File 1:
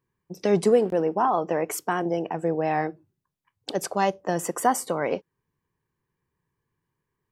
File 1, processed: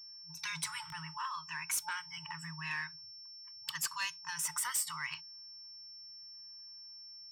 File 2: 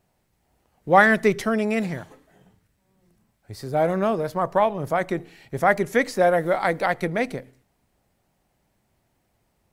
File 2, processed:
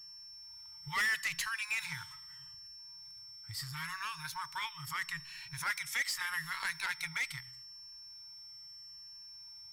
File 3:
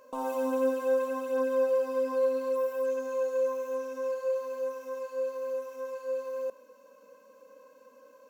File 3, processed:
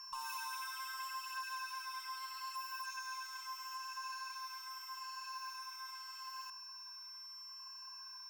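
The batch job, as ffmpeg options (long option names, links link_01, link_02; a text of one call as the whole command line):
ffmpeg -i in.wav -filter_complex "[0:a]afftfilt=real='re*pow(10,7/40*sin(2*PI*(1.5*log(max(b,1)*sr/1024/100)/log(2)-(-0.78)*(pts-256)/sr)))':imag='im*pow(10,7/40*sin(2*PI*(1.5*log(max(b,1)*sr/1024/100)/log(2)-(-0.78)*(pts-256)/sr)))':win_size=1024:overlap=0.75,afftfilt=real='re*(1-between(b*sr/4096,170,870))':imag='im*(1-between(b*sr/4096,170,870))':win_size=4096:overlap=0.75,lowshelf=frequency=410:gain=-8,acrossover=split=1800[link_01][link_02];[link_01]acompressor=threshold=-45dB:ratio=12[link_03];[link_03][link_02]amix=inputs=2:normalize=0,aeval=exprs='val(0)+0.00316*sin(2*PI*5400*n/s)':channel_layout=same,asoftclip=type=tanh:threshold=-29.5dB,volume=1.5dB" out.wav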